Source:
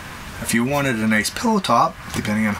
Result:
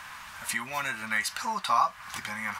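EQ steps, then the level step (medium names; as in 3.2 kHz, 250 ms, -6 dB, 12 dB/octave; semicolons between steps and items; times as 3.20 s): resonant low shelf 650 Hz -14 dB, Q 1.5; -9.0 dB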